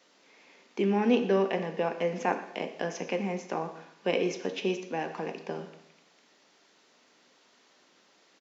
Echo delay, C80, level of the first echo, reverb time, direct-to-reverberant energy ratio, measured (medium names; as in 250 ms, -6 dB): 119 ms, 12.0 dB, -17.5 dB, 0.80 s, 6.5 dB